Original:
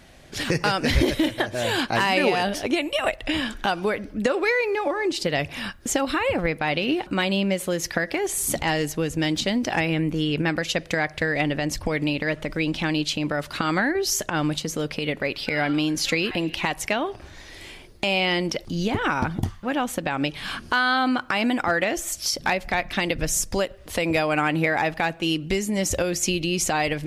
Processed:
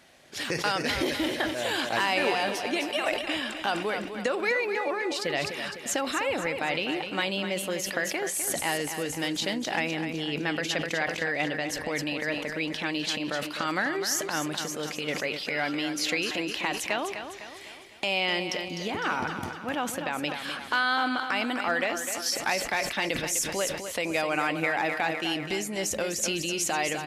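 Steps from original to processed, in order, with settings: HPF 410 Hz 6 dB/oct; on a send: feedback echo 0.253 s, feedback 49%, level -9 dB; on the sum: sustainer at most 61 dB/s; gain -4 dB

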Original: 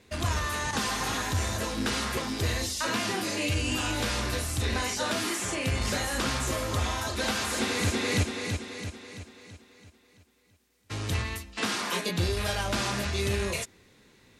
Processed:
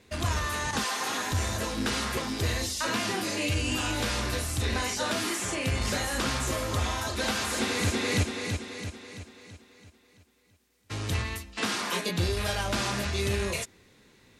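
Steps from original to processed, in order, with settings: 0.83–1.3 HPF 500 Hz -> 170 Hz 12 dB/oct

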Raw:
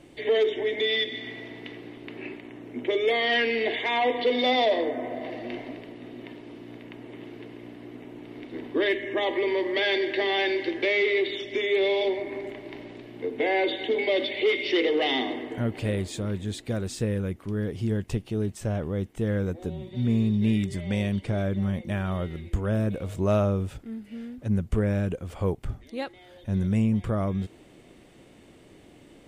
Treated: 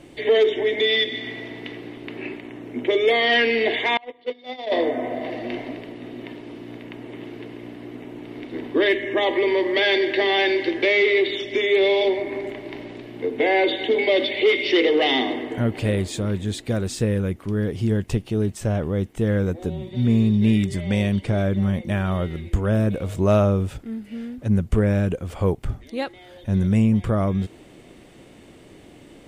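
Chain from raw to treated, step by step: 3.97–4.72 gate -19 dBFS, range -30 dB; gain +5.5 dB

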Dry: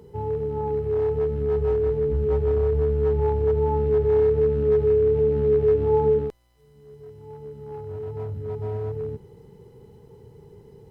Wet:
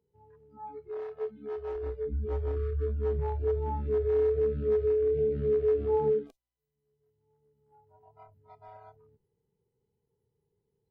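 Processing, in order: 0.89–1.76 low shelf 67 Hz -12 dB; 2.56–2.86 spectral delete 480–1100 Hz; spectral noise reduction 25 dB; gain -6.5 dB

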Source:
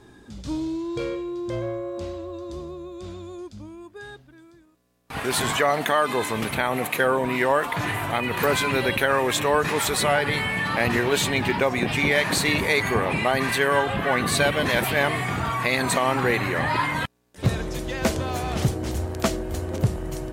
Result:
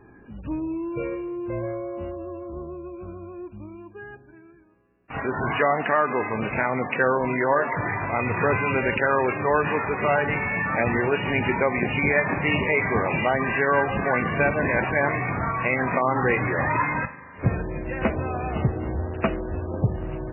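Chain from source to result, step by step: 8.19–8.66 bell 110 Hz +8.5 dB 0.46 oct; spring tank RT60 2.6 s, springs 39 ms, chirp 70 ms, DRR 15 dB; MP3 8 kbps 11025 Hz

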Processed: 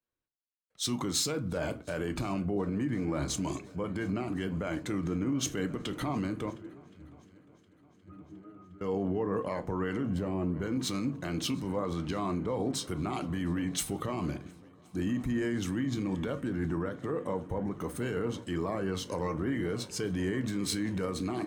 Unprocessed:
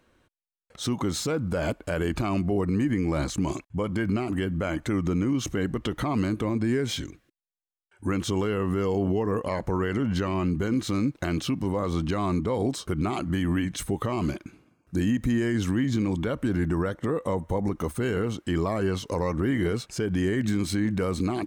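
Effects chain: 6.5–8.81 octave resonator D#, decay 0.2 s; 10.05–10.58 spectral gain 880–7200 Hz -9 dB; multi-head echo 0.357 s, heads second and third, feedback 71%, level -21 dB; reverb, pre-delay 7 ms, DRR 10 dB; limiter -19.5 dBFS, peak gain reduction 6 dB; low shelf 77 Hz -7.5 dB; three-band expander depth 70%; gain -3.5 dB

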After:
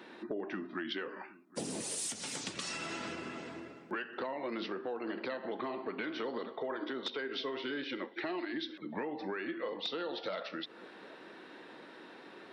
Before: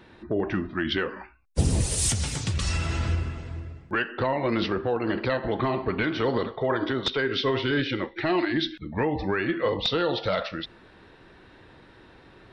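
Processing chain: HPF 220 Hz 24 dB/oct; compressor 4:1, threshold -39 dBFS, peak gain reduction 15.5 dB; dark delay 0.77 s, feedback 44%, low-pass 1600 Hz, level -19.5 dB; gain +1 dB

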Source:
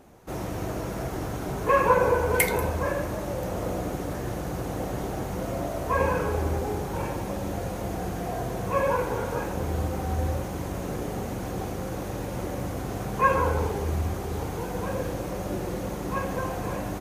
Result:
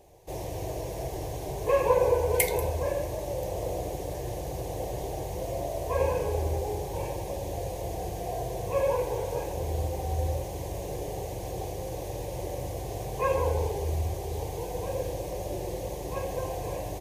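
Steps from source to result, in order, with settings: fixed phaser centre 560 Hz, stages 4

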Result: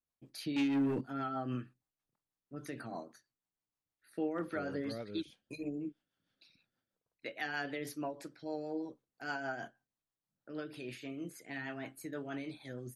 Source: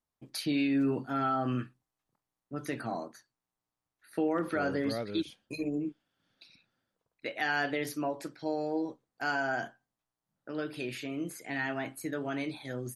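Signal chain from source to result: 0.56–1.01 sample leveller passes 2; rotary speaker horn 6.3 Hz; gain -5 dB

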